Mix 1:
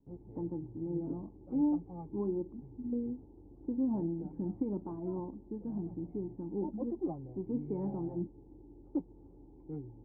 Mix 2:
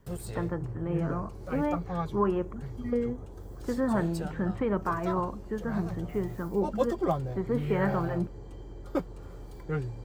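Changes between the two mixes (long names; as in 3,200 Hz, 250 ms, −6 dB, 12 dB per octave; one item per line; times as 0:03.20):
speech: add spectral tilt +1.5 dB per octave
master: remove formant resonators in series u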